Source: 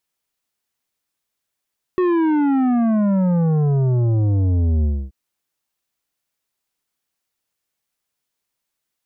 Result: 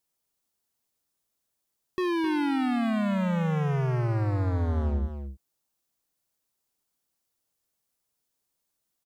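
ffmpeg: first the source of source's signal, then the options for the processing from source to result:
-f lavfi -i "aevalsrc='0.168*clip((3.13-t)/0.27,0,1)*tanh(3.16*sin(2*PI*370*3.13/log(65/370)*(exp(log(65/370)*t/3.13)-1)))/tanh(3.16)':d=3.13:s=44100"
-filter_complex "[0:a]equalizer=f=2.2k:t=o:w=1.9:g=-7,asoftclip=type=hard:threshold=-26dB,asplit=2[a][b];[b]aecho=0:1:262:0.355[c];[a][c]amix=inputs=2:normalize=0"

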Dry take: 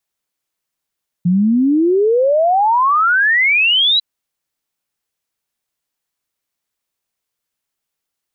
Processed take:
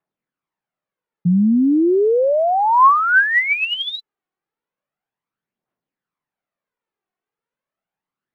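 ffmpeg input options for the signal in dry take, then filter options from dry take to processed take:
-f lavfi -i "aevalsrc='0.316*clip(min(t,2.75-t)/0.01,0,1)*sin(2*PI*170*2.75/log(4000/170)*(exp(log(4000/170)*t/2.75)-1))':d=2.75:s=44100"
-af "lowpass=1.6k,lowshelf=f=110:t=q:w=1.5:g=-11.5,aphaser=in_gain=1:out_gain=1:delay=2.8:decay=0.51:speed=0.35:type=triangular"

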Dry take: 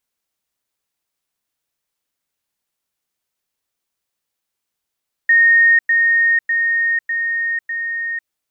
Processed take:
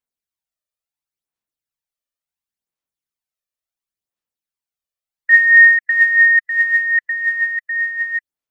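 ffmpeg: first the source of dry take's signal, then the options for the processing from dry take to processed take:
-f lavfi -i "aevalsrc='pow(10,(-8-3*floor(t/0.6))/20)*sin(2*PI*1850*t)*clip(min(mod(t,0.6),0.5-mod(t,0.6))/0.005,0,1)':d=3:s=44100"
-af "afftdn=nr=13:nf=-29,aphaser=in_gain=1:out_gain=1:delay=1.7:decay=0.5:speed=0.71:type=sinusoidal"

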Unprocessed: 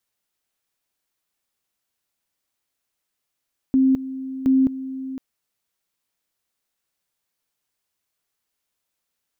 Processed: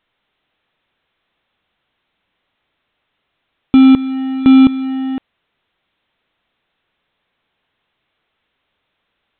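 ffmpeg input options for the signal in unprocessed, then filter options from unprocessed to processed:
-f lavfi -i "aevalsrc='pow(10,(-13-14.5*gte(mod(t,0.72),0.21))/20)*sin(2*PI*264*t)':d=1.44:s=44100"
-af "dynaudnorm=f=120:g=3:m=12dB,acrusher=bits=2:mode=log:mix=0:aa=0.000001" -ar 8000 -c:a pcm_alaw

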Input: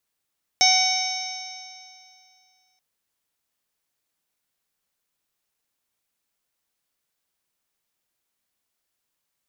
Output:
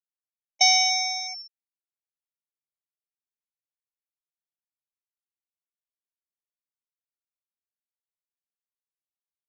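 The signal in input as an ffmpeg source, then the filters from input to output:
-f lavfi -i "aevalsrc='0.1*pow(10,-3*t/2.39)*sin(2*PI*744.59*t)+0.01*pow(10,-3*t/2.39)*sin(2*PI*1492.75*t)+0.0944*pow(10,-3*t/2.39)*sin(2*PI*2248.01*t)+0.0251*pow(10,-3*t/2.39)*sin(2*PI*3013.85*t)+0.075*pow(10,-3*t/2.39)*sin(2*PI*3793.67*t)+0.02*pow(10,-3*t/2.39)*sin(2*PI*4590.76*t)+0.158*pow(10,-3*t/2.39)*sin(2*PI*5408.3*t)+0.0891*pow(10,-3*t/2.39)*sin(2*PI*6249.32*t)':d=2.18:s=44100"
-af "afftfilt=real='re*gte(hypot(re,im),0.112)':imag='im*gte(hypot(re,im),0.112)':win_size=1024:overlap=0.75"

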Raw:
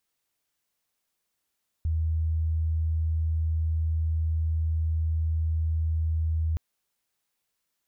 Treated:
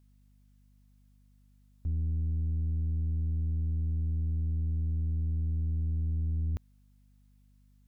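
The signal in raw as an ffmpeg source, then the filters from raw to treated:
-f lavfi -i "sine=f=80:d=4.72:r=44100,volume=-4.94dB"
-af "aeval=exprs='val(0)+0.00112*(sin(2*PI*50*n/s)+sin(2*PI*2*50*n/s)/2+sin(2*PI*3*50*n/s)/3+sin(2*PI*4*50*n/s)/4+sin(2*PI*5*50*n/s)/5)':c=same,aeval=exprs='(tanh(22.4*val(0)+0.45)-tanh(0.45))/22.4':c=same"

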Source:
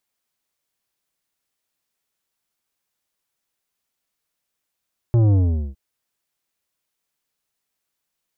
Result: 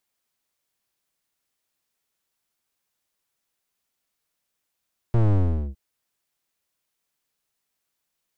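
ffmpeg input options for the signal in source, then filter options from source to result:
-f lavfi -i "aevalsrc='0.211*clip((0.61-t)/0.42,0,1)*tanh(3.35*sin(2*PI*120*0.61/log(65/120)*(exp(log(65/120)*t/0.61)-1)))/tanh(3.35)':d=0.61:s=44100"
-af "aeval=exprs='clip(val(0),-1,0.0282)':c=same"

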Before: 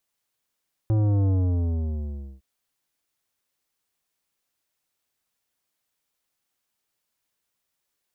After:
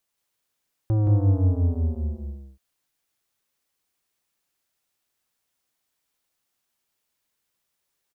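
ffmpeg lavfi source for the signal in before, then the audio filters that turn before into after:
-f lavfi -i "aevalsrc='0.106*clip((1.51-t)/1.14,0,1)*tanh(3.98*sin(2*PI*110*1.51/log(65/110)*(exp(log(65/110)*t/1.51)-1)))/tanh(3.98)':d=1.51:s=44100"
-af "aecho=1:1:172:0.668"

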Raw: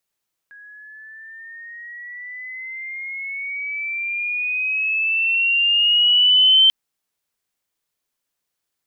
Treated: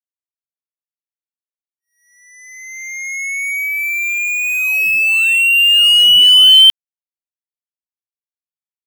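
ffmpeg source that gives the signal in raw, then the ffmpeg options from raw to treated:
-f lavfi -i "aevalsrc='pow(10,(-9+31*(t/6.19-1))/20)*sin(2*PI*1650*6.19/(11*log(2)/12)*(exp(11*log(2)/12*t/6.19)-1))':d=6.19:s=44100"
-filter_complex "[0:a]asplit=2[a][b];[b]adynamicsmooth=sensitivity=5:basefreq=1.7k,volume=2dB[c];[a][c]amix=inputs=2:normalize=0,acrusher=bits=3:mix=0:aa=0.5"

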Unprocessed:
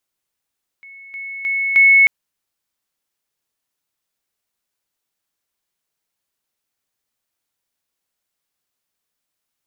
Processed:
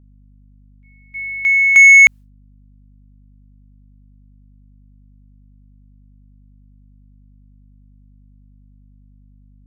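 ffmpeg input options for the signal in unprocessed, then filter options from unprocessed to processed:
-f lavfi -i "aevalsrc='pow(10,(-37+10*floor(t/0.31))/20)*sin(2*PI*2200*t)':d=1.24:s=44100"
-af "agate=range=-33dB:threshold=-27dB:ratio=3:detection=peak,acontrast=88,aeval=exprs='val(0)+0.00447*(sin(2*PI*50*n/s)+sin(2*PI*2*50*n/s)/2+sin(2*PI*3*50*n/s)/3+sin(2*PI*4*50*n/s)/4+sin(2*PI*5*50*n/s)/5)':c=same"

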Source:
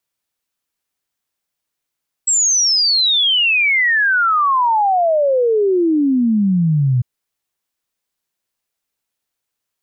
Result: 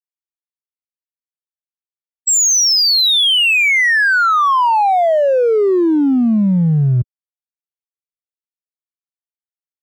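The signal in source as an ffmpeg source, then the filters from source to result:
-f lavfi -i "aevalsrc='0.266*clip(min(t,4.75-t)/0.01,0,1)*sin(2*PI*7800*4.75/log(120/7800)*(exp(log(120/7800)*t/4.75)-1))':d=4.75:s=44100"
-filter_complex "[0:a]highpass=f=59:w=0.5412,highpass=f=59:w=1.3066,afftfilt=real='re*gte(hypot(re,im),0.0708)':imag='im*gte(hypot(re,im),0.0708)':win_size=1024:overlap=0.75,asplit=2[a][b];[b]volume=19.5dB,asoftclip=hard,volume=-19.5dB,volume=-6.5dB[c];[a][c]amix=inputs=2:normalize=0"

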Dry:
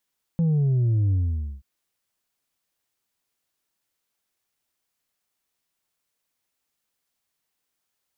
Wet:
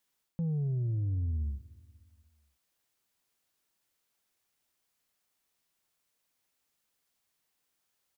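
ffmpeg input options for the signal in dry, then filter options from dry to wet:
-f lavfi -i "aevalsrc='0.119*clip((1.23-t)/0.5,0,1)*tanh(1.41*sin(2*PI*170*1.23/log(65/170)*(exp(log(65/170)*t/1.23)-1)))/tanh(1.41)':d=1.23:s=44100"
-af "areverse,acompressor=threshold=-31dB:ratio=6,areverse,aecho=1:1:239|478|717|956:0.075|0.0427|0.0244|0.0139"

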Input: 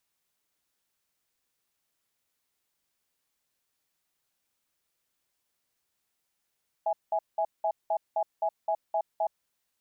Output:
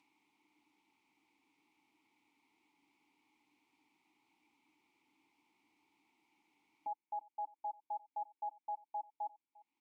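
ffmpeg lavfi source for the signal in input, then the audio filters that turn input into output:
-f lavfi -i "aevalsrc='0.0447*(sin(2*PI*653*t)+sin(2*PI*831*t))*clip(min(mod(t,0.26),0.07-mod(t,0.26))/0.005,0,1)':d=2.41:s=44100"
-filter_complex "[0:a]acompressor=mode=upward:threshold=-35dB:ratio=2.5,asplit=3[a][b][c];[a]bandpass=f=300:t=q:w=8,volume=0dB[d];[b]bandpass=f=870:t=q:w=8,volume=-6dB[e];[c]bandpass=f=2.24k:t=q:w=8,volume=-9dB[f];[d][e][f]amix=inputs=3:normalize=0,asplit=2[g][h];[h]adelay=349.9,volume=-22dB,highshelf=f=4k:g=-7.87[i];[g][i]amix=inputs=2:normalize=0"

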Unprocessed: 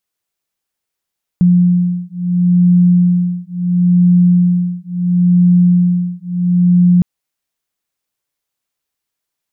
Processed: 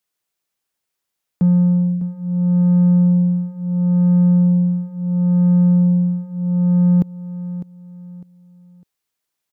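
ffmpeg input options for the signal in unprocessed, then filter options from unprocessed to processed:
-f lavfi -i "aevalsrc='0.266*(sin(2*PI*177*t)+sin(2*PI*177.73*t))':d=5.61:s=44100"
-filter_complex "[0:a]lowshelf=f=83:g=-5,acrossover=split=170[a][b];[a]asoftclip=type=tanh:threshold=-23.5dB[c];[c][b]amix=inputs=2:normalize=0,aecho=1:1:603|1206|1809:0.211|0.0676|0.0216"

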